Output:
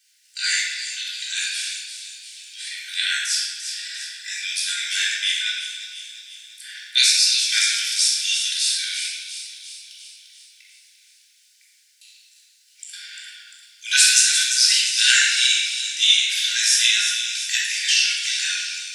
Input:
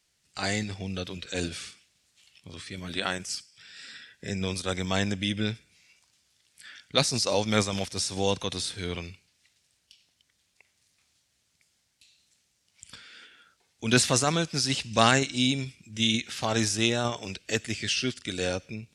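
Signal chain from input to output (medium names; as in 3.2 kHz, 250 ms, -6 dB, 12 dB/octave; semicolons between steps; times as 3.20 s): treble shelf 3.2 kHz +9 dB; word length cut 12-bit, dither none; brick-wall FIR high-pass 1.4 kHz; feedback echo behind a high-pass 347 ms, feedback 57%, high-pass 3.4 kHz, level -7.5 dB; simulated room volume 1100 m³, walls mixed, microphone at 3.7 m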